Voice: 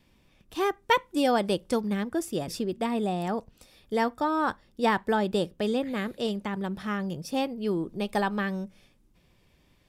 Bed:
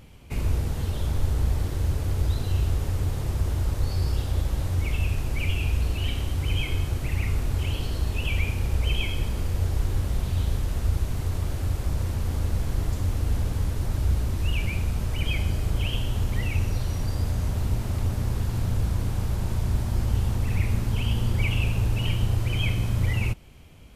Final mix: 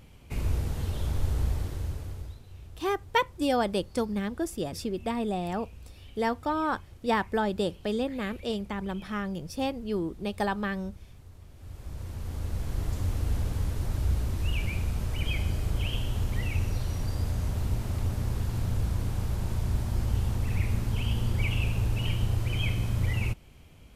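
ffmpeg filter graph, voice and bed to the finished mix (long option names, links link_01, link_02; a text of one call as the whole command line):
ffmpeg -i stem1.wav -i stem2.wav -filter_complex "[0:a]adelay=2250,volume=-2dB[link_01];[1:a]volume=15.5dB,afade=type=out:start_time=1.41:duration=0.99:silence=0.112202,afade=type=in:start_time=11.54:duration=1.48:silence=0.112202[link_02];[link_01][link_02]amix=inputs=2:normalize=0" out.wav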